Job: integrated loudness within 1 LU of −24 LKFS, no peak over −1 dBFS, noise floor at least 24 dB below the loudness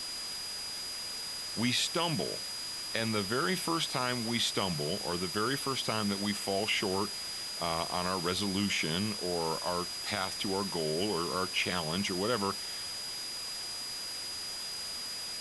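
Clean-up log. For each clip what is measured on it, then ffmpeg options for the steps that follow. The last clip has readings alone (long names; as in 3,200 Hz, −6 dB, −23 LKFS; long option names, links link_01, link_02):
interfering tone 4,900 Hz; level of the tone −38 dBFS; background noise floor −39 dBFS; target noise floor −57 dBFS; integrated loudness −32.5 LKFS; sample peak −14.0 dBFS; target loudness −24.0 LKFS
→ -af "bandreject=frequency=4900:width=30"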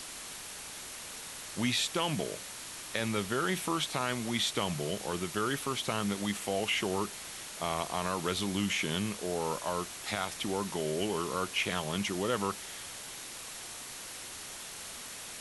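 interfering tone none found; background noise floor −44 dBFS; target noise floor −58 dBFS
→ -af "afftdn=noise_reduction=14:noise_floor=-44"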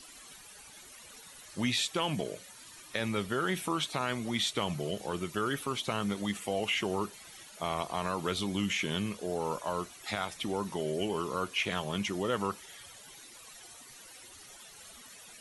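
background noise floor −52 dBFS; target noise floor −57 dBFS
→ -af "afftdn=noise_reduction=6:noise_floor=-52"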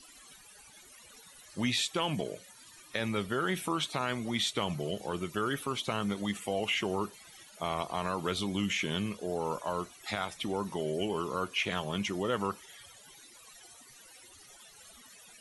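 background noise floor −55 dBFS; target noise floor −57 dBFS
→ -af "afftdn=noise_reduction=6:noise_floor=-55"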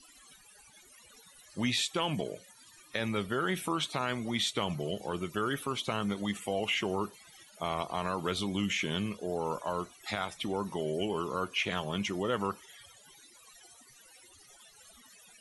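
background noise floor −58 dBFS; integrated loudness −33.5 LKFS; sample peak −15.5 dBFS; target loudness −24.0 LKFS
→ -af "volume=9.5dB"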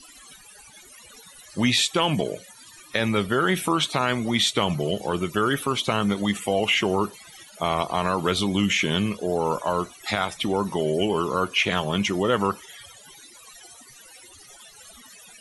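integrated loudness −24.0 LKFS; sample peak −6.0 dBFS; background noise floor −49 dBFS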